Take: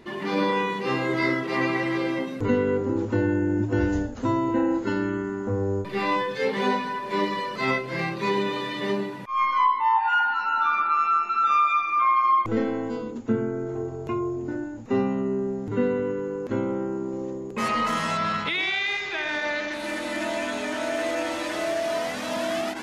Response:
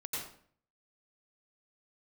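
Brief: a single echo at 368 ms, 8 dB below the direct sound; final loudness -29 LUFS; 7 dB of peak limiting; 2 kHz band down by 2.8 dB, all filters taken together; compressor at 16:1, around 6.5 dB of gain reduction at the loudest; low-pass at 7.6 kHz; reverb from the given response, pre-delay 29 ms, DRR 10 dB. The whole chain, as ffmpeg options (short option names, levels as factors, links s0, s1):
-filter_complex "[0:a]lowpass=7600,equalizer=f=2000:t=o:g=-3.5,acompressor=threshold=0.0631:ratio=16,alimiter=limit=0.0708:level=0:latency=1,aecho=1:1:368:0.398,asplit=2[s0][s1];[1:a]atrim=start_sample=2205,adelay=29[s2];[s1][s2]afir=irnorm=-1:irlink=0,volume=0.266[s3];[s0][s3]amix=inputs=2:normalize=0,volume=1.12"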